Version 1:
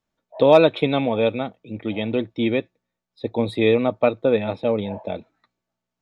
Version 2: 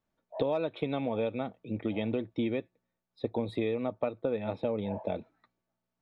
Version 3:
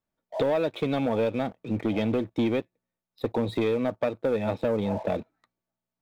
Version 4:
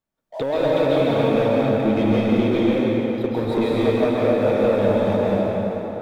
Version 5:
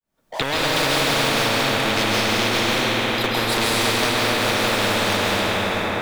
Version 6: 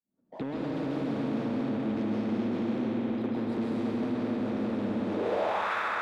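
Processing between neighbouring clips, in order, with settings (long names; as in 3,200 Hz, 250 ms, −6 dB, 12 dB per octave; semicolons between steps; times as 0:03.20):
high-shelf EQ 3,000 Hz −8.5 dB; downward compressor 8 to 1, threshold −26 dBFS, peak gain reduction 17 dB; level −1.5 dB
leveller curve on the samples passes 2
dense smooth reverb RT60 4.2 s, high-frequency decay 0.7×, pre-delay 120 ms, DRR −7.5 dB
fade in at the beginning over 0.87 s; every bin compressed towards the loudest bin 4 to 1
band-pass filter sweep 240 Hz → 1,300 Hz, 0:05.05–0:05.72; in parallel at −8 dB: hard clipping −34.5 dBFS, distortion −7 dB; on the sum: level −1.5 dB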